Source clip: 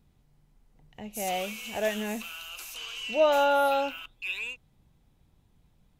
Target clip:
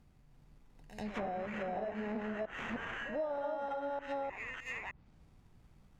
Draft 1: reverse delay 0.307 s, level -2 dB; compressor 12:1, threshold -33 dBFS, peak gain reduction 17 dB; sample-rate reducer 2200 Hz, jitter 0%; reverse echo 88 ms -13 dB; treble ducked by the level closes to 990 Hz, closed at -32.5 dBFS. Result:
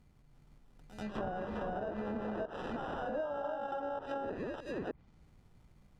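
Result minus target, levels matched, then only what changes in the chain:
sample-rate reducer: distortion +4 dB
change: sample-rate reducer 4600 Hz, jitter 0%

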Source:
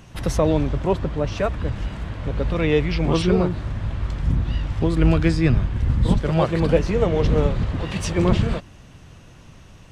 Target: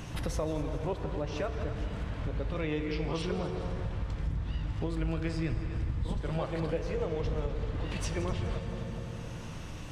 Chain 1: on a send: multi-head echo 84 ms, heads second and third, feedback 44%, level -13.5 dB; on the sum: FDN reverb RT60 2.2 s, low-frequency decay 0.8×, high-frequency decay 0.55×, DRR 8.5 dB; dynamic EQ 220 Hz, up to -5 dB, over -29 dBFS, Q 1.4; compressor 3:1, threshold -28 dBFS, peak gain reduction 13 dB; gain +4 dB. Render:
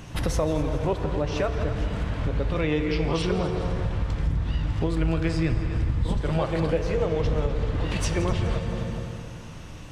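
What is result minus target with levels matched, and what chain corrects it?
compressor: peak gain reduction -8 dB
on a send: multi-head echo 84 ms, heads second and third, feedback 44%, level -13.5 dB; on the sum: FDN reverb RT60 2.2 s, low-frequency decay 0.8×, high-frequency decay 0.55×, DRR 8.5 dB; dynamic EQ 220 Hz, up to -5 dB, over -29 dBFS, Q 1.4; compressor 3:1, threshold -40 dBFS, peak gain reduction 21 dB; gain +4 dB

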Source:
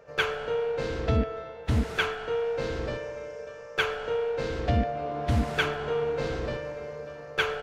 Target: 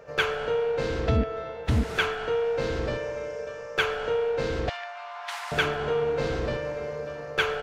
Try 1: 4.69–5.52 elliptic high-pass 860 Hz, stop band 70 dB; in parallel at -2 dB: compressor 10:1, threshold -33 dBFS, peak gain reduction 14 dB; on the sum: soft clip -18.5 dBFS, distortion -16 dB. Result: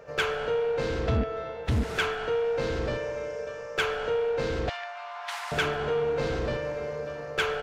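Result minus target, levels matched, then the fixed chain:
soft clip: distortion +18 dB
4.69–5.52 elliptic high-pass 860 Hz, stop band 70 dB; in parallel at -2 dB: compressor 10:1, threshold -33 dBFS, peak gain reduction 14 dB; on the sum: soft clip -7 dBFS, distortion -35 dB

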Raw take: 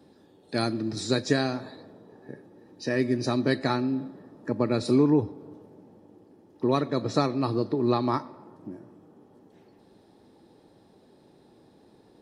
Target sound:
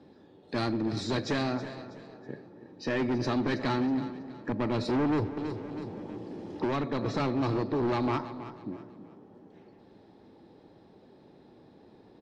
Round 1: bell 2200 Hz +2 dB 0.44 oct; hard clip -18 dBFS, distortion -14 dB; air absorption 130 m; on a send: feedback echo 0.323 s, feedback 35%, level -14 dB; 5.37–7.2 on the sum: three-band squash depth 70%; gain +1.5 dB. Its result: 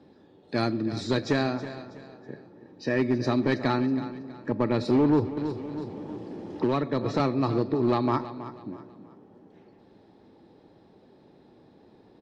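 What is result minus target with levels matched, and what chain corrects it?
hard clip: distortion -8 dB
bell 2200 Hz +2 dB 0.44 oct; hard clip -26 dBFS, distortion -6 dB; air absorption 130 m; on a send: feedback echo 0.323 s, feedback 35%, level -14 dB; 5.37–7.2 on the sum: three-band squash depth 70%; gain +1.5 dB

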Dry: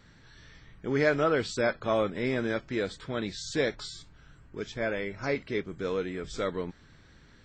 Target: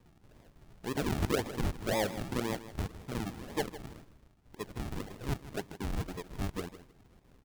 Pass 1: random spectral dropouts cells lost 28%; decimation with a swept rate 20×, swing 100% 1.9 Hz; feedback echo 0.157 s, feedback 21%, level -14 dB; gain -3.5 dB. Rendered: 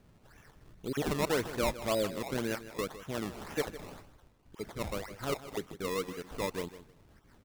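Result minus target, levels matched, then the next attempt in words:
decimation with a swept rate: distortion -14 dB
random spectral dropouts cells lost 28%; decimation with a swept rate 60×, swing 100% 1.9 Hz; feedback echo 0.157 s, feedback 21%, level -14 dB; gain -3.5 dB

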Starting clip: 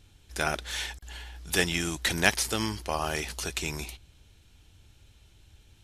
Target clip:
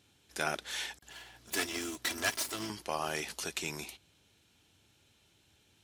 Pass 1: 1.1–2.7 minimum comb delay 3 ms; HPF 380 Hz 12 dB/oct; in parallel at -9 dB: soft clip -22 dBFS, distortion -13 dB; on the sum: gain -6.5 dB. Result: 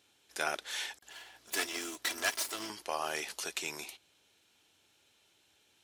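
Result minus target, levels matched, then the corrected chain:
125 Hz band -12.0 dB
1.1–2.7 minimum comb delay 3 ms; HPF 170 Hz 12 dB/oct; in parallel at -9 dB: soft clip -22 dBFS, distortion -13 dB; on the sum: gain -6.5 dB

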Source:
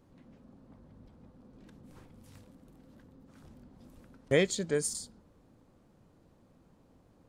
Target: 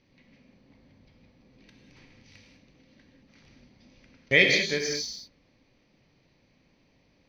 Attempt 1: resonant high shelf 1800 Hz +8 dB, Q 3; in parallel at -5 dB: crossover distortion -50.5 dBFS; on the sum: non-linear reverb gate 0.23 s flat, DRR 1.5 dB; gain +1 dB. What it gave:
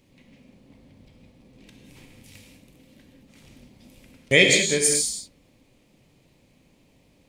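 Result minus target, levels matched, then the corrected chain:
8000 Hz band +10.5 dB
rippled Chebyshev low-pass 6200 Hz, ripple 6 dB; resonant high shelf 1800 Hz +8 dB, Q 3; in parallel at -5 dB: crossover distortion -50.5 dBFS; on the sum: non-linear reverb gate 0.23 s flat, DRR 1.5 dB; gain +1 dB

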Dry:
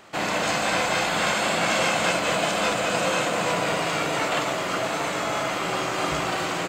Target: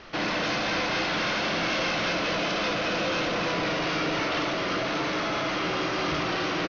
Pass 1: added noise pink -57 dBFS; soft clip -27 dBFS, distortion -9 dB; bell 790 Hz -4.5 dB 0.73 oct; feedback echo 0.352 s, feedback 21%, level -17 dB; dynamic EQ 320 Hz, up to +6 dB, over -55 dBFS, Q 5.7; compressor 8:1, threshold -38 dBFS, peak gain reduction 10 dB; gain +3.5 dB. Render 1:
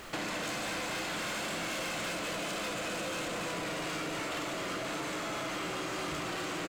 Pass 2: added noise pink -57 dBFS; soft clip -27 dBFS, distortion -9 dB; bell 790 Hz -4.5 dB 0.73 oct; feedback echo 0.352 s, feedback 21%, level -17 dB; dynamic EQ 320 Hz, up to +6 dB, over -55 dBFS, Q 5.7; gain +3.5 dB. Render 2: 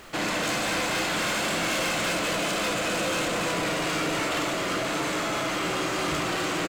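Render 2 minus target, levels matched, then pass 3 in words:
8000 Hz band +9.5 dB
added noise pink -57 dBFS; soft clip -27 dBFS, distortion -9 dB; steep low-pass 6000 Hz 96 dB/oct; bell 790 Hz -4.5 dB 0.73 oct; feedback echo 0.352 s, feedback 21%, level -17 dB; dynamic EQ 320 Hz, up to +6 dB, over -55 dBFS, Q 5.7; gain +3.5 dB

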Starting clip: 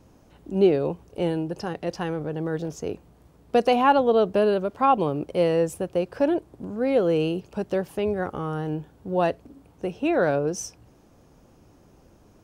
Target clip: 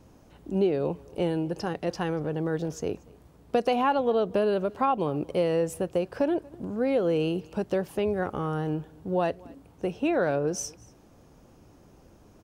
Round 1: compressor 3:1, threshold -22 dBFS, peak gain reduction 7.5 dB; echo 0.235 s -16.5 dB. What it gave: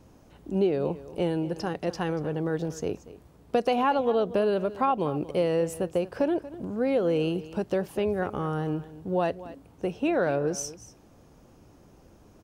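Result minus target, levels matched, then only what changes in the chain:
echo-to-direct +8 dB
change: echo 0.235 s -24.5 dB

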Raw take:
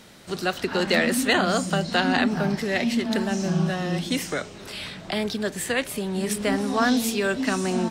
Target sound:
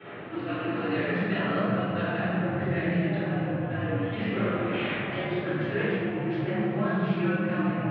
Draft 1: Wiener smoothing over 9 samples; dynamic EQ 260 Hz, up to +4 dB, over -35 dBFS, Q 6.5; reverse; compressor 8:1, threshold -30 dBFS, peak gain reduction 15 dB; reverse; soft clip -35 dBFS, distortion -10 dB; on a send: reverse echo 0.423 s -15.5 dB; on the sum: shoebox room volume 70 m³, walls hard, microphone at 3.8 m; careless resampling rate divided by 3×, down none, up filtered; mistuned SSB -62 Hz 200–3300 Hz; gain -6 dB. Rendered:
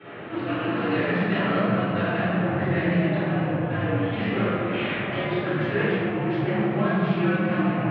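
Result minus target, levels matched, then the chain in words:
compressor: peak gain reduction -7.5 dB
Wiener smoothing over 9 samples; dynamic EQ 260 Hz, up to +4 dB, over -35 dBFS, Q 6.5; reverse; compressor 8:1, threshold -38.5 dBFS, peak gain reduction 22 dB; reverse; soft clip -35 dBFS, distortion -17 dB; on a send: reverse echo 0.423 s -15.5 dB; on the sum: shoebox room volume 70 m³, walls hard, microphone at 3.8 m; careless resampling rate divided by 3×, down none, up filtered; mistuned SSB -62 Hz 200–3300 Hz; gain -6 dB

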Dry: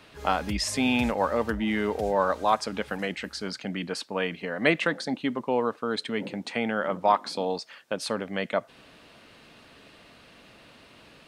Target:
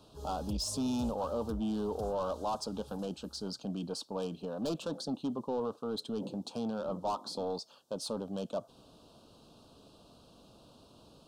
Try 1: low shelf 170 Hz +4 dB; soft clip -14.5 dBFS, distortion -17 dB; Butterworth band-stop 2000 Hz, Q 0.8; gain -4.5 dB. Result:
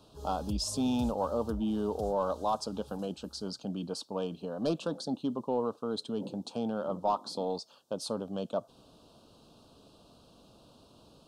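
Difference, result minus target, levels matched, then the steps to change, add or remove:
soft clip: distortion -8 dB
change: soft clip -23.5 dBFS, distortion -9 dB

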